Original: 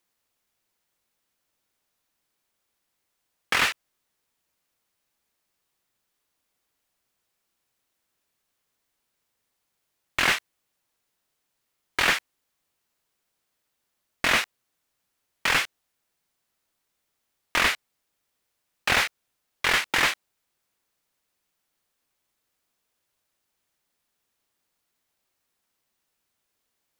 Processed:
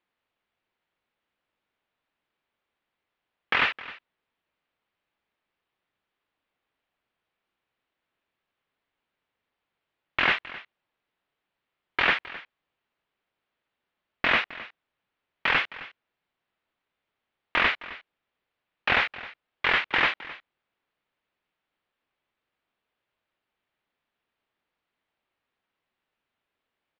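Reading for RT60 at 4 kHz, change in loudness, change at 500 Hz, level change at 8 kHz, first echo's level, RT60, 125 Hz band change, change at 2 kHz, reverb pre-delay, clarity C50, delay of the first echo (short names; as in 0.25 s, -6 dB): none, -1.0 dB, -0.5 dB, under -25 dB, -17.5 dB, none, -2.5 dB, 0.0 dB, none, none, 0.263 s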